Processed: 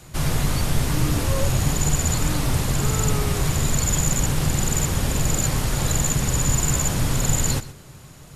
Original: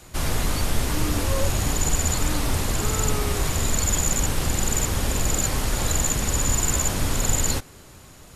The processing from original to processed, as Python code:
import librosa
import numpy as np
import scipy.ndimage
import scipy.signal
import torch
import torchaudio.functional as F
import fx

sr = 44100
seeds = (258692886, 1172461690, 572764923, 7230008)

y = fx.peak_eq(x, sr, hz=140.0, db=11.0, octaves=0.54)
y = y + 10.0 ** (-16.5 / 20.0) * np.pad(y, (int(124 * sr / 1000.0), 0))[:len(y)]